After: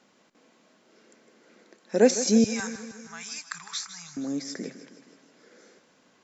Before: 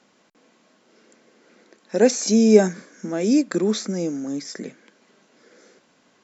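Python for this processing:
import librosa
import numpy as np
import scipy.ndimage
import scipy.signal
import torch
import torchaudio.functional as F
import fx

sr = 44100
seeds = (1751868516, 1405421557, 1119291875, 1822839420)

y = fx.ellip_bandstop(x, sr, low_hz=120.0, high_hz=980.0, order=3, stop_db=40, at=(2.44, 4.17))
y = fx.echo_feedback(y, sr, ms=157, feedback_pct=58, wet_db=-13.5)
y = y * librosa.db_to_amplitude(-2.5)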